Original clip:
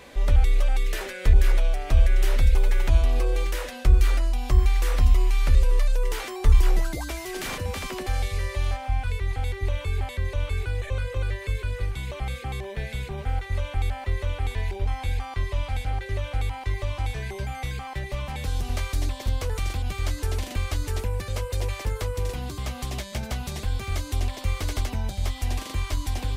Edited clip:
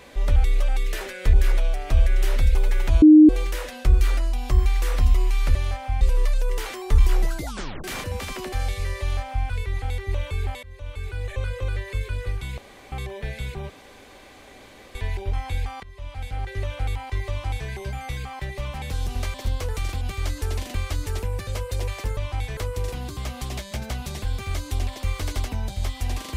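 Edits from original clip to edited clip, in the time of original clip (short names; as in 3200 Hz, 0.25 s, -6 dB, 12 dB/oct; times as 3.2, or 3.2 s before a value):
3.02–3.29 bleep 307 Hz -6 dBFS
6.98 tape stop 0.40 s
8.55–9.01 copy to 5.55
10.17–10.92 fade in, from -20.5 dB
12.12–12.46 room tone
13.24–14.49 room tone
15.37–16.08 fade in, from -23 dB
16.83–17.23 copy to 21.98
18.88–19.15 cut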